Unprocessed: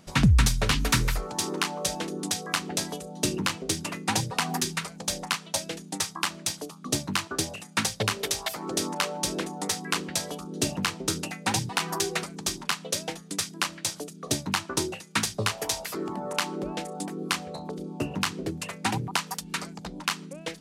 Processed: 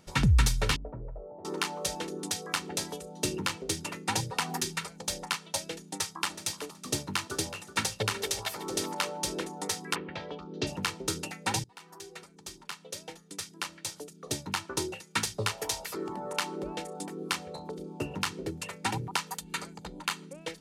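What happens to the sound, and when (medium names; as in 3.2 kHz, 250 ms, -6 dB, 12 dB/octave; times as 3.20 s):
0.76–1.45 s: four-pole ladder low-pass 670 Hz, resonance 75%
5.84–9.11 s: feedback delay 373 ms, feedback 20%, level -13 dB
9.94–10.66 s: low-pass 2.4 kHz -> 5.1 kHz 24 dB/octave
11.64–15.11 s: fade in, from -22.5 dB
19.29–20.26 s: band-stop 5.4 kHz, Q 7.3
whole clip: comb 2.2 ms, depth 33%; trim -4 dB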